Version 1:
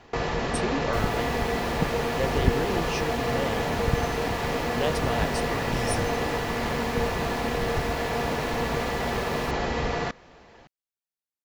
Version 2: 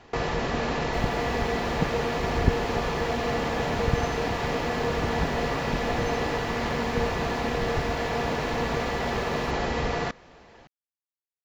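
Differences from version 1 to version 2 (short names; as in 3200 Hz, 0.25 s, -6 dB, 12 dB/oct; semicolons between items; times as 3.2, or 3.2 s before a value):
speech: muted; second sound -10.0 dB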